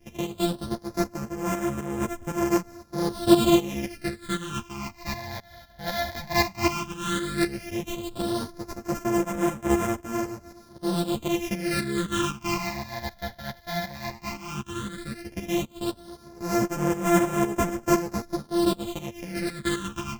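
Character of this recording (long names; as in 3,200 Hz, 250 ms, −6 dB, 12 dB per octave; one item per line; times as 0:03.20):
a buzz of ramps at a fixed pitch in blocks of 128 samples
phaser sweep stages 8, 0.13 Hz, lowest notch 350–4,200 Hz
tremolo saw up 3.9 Hz, depth 75%
a shimmering, thickened sound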